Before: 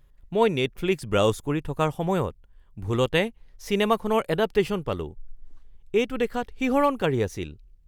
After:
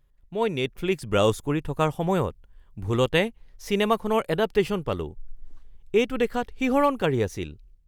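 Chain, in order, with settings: level rider gain up to 11.5 dB; trim -7 dB

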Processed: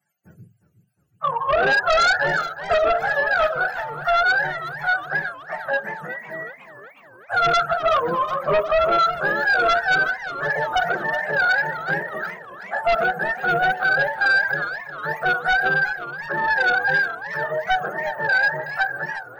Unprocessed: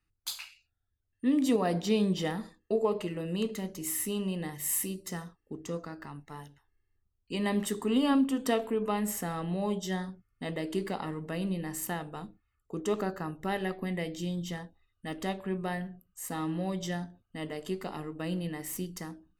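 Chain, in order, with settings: spectrum inverted on a logarithmic axis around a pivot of 530 Hz; Chebyshev high-pass 160 Hz, order 4; high-order bell 1.1 kHz +9.5 dB; static phaser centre 990 Hz, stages 6; in parallel at -11 dB: sine folder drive 13 dB, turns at -12.5 dBFS; on the sum: modulated delay 364 ms, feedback 57%, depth 184 cents, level -13 dB; trim +3.5 dB

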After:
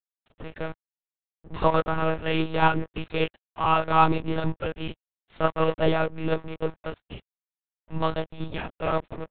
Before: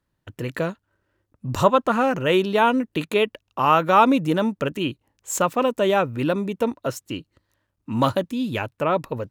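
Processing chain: chorus voices 6, 0.74 Hz, delay 27 ms, depth 1.2 ms; crossover distortion -34 dBFS; monotone LPC vocoder at 8 kHz 160 Hz

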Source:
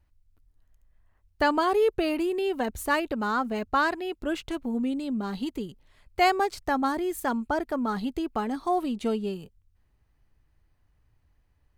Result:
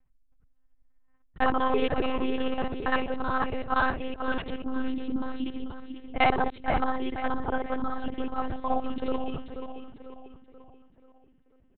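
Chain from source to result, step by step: time reversed locally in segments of 47 ms; feedback delay 488 ms, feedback 45%, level -8.5 dB; monotone LPC vocoder at 8 kHz 260 Hz; level-controlled noise filter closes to 2.2 kHz, open at -24.5 dBFS

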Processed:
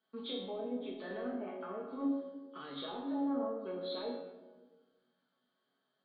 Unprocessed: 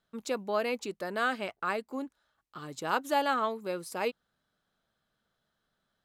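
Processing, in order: knee-point frequency compression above 3 kHz 4:1; low-pass that closes with the level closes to 410 Hz, closed at -27 dBFS; high-pass 200 Hz 24 dB/octave; peak limiter -33 dBFS, peak gain reduction 11.5 dB; flange 0.71 Hz, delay 7.7 ms, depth 5.9 ms, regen -75%; chord resonator F#2 sus4, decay 0.44 s; flutter echo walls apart 8.7 m, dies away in 0.23 s; simulated room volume 900 m³, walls mixed, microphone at 1.5 m; tape noise reduction on one side only decoder only; trim +17 dB

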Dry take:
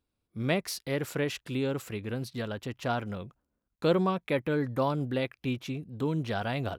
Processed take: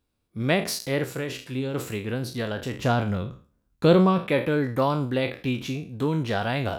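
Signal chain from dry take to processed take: spectral sustain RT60 0.39 s; 1.04–1.74 s: feedback comb 130 Hz, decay 0.23 s, harmonics all, mix 60%; 2.79–4.19 s: bass shelf 230 Hz +8.5 dB; trim +4.5 dB

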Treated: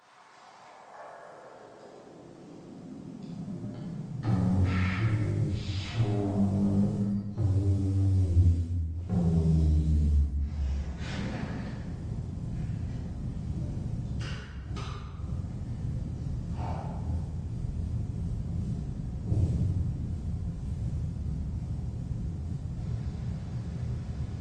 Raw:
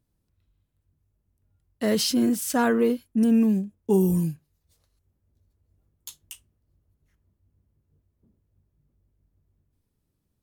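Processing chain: peaking EQ 310 Hz +9 dB 1.3 oct; compression 2:1, threshold -32 dBFS, peak gain reduction 12 dB; peak limiter -24.5 dBFS, peak gain reduction 8 dB; inverted gate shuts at -39 dBFS, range -30 dB; overdrive pedal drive 35 dB, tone 1 kHz, clips at -28.5 dBFS; high-pass sweep 2.4 kHz -> 160 Hz, 0.07–2.28 s; modulation noise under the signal 32 dB; saturation -39.5 dBFS, distortion -11 dB; reverberation RT60 0.80 s, pre-delay 4 ms, DRR -10.5 dB; speed mistake 78 rpm record played at 33 rpm; trim +6.5 dB; Opus 32 kbps 48 kHz

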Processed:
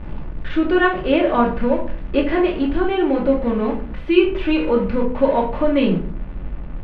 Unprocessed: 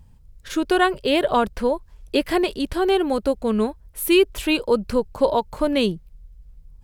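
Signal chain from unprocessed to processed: jump at every zero crossing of -27 dBFS; low-pass 2.8 kHz 24 dB/octave; simulated room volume 460 m³, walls furnished, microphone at 2.5 m; trim -3 dB

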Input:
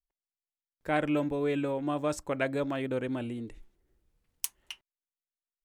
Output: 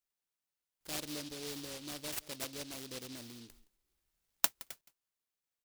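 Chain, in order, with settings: pre-emphasis filter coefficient 0.9; delay 168 ms -20.5 dB; dynamic bell 2.6 kHz, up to -4 dB, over -57 dBFS, Q 1.2; delay time shaken by noise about 4 kHz, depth 0.3 ms; trim +4.5 dB

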